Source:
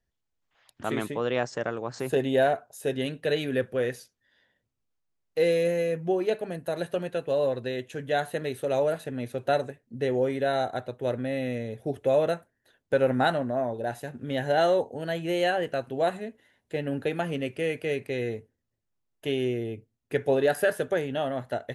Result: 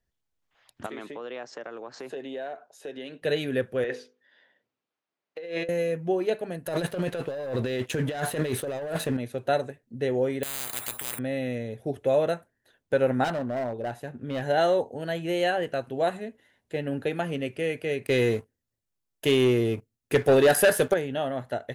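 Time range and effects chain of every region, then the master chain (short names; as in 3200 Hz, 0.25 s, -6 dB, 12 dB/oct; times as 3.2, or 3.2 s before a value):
0.86–3.22 HPF 120 Hz + three-band isolator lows -17 dB, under 220 Hz, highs -17 dB, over 6300 Hz + compressor 3:1, threshold -36 dBFS
3.84–5.69 BPF 290–3600 Hz + notches 50/100/150/200/250/300/350/400/450/500 Hz + negative-ratio compressor -33 dBFS
6.66–9.17 sample leveller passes 2 + negative-ratio compressor -29 dBFS
10.43–11.19 compressor 3:1, threshold -33 dBFS + careless resampling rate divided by 4×, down none, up zero stuff + spectral compressor 10:1
13.24–14.42 high shelf 3300 Hz -7.5 dB + overloaded stage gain 25.5 dB
18.06–20.94 high shelf 4000 Hz +7 dB + sample leveller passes 2
whole clip: dry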